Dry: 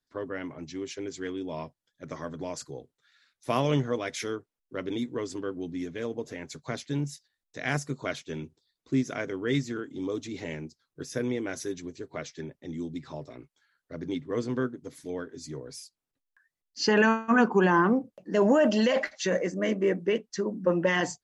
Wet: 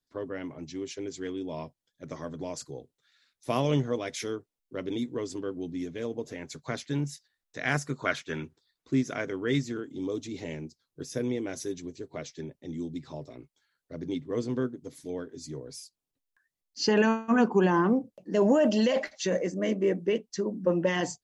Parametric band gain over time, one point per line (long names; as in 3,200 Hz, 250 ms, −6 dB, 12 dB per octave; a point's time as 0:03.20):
parametric band 1,500 Hz 1.3 octaves
0:06.12 −5 dB
0:06.84 +2.5 dB
0:07.70 +2.5 dB
0:08.40 +12.5 dB
0:08.93 +0.5 dB
0:09.45 +0.5 dB
0:09.91 −6.5 dB